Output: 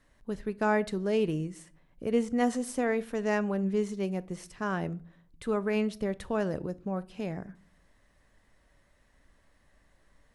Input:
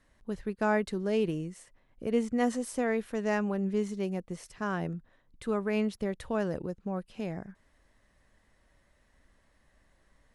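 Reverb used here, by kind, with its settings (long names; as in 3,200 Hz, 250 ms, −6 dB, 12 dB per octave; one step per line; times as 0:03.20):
rectangular room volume 550 cubic metres, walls furnished, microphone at 0.34 metres
level +1 dB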